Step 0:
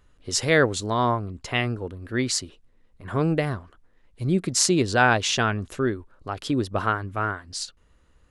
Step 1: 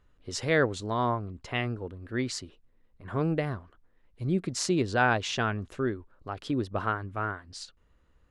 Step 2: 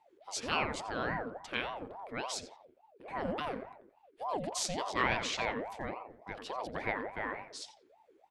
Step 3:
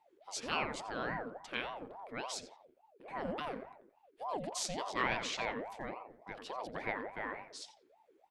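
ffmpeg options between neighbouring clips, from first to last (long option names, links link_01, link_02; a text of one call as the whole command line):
ffmpeg -i in.wav -af "lowpass=frequency=3300:poles=1,volume=-5dB" out.wav
ffmpeg -i in.wav -filter_complex "[0:a]equalizer=frequency=390:width_type=o:width=1.7:gain=-14.5,asplit=2[link_01][link_02];[link_02]adelay=87,lowpass=frequency=1400:poles=1,volume=-5.5dB,asplit=2[link_03][link_04];[link_04]adelay=87,lowpass=frequency=1400:poles=1,volume=0.45,asplit=2[link_05][link_06];[link_06]adelay=87,lowpass=frequency=1400:poles=1,volume=0.45,asplit=2[link_07][link_08];[link_08]adelay=87,lowpass=frequency=1400:poles=1,volume=0.45,asplit=2[link_09][link_10];[link_10]adelay=87,lowpass=frequency=1400:poles=1,volume=0.45[link_11];[link_01][link_03][link_05][link_07][link_09][link_11]amix=inputs=6:normalize=0,aeval=exprs='val(0)*sin(2*PI*620*n/s+620*0.45/3.5*sin(2*PI*3.5*n/s))':channel_layout=same" out.wav
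ffmpeg -i in.wav -af "equalizer=frequency=80:width_type=o:width=0.42:gain=-13.5,volume=-3dB" out.wav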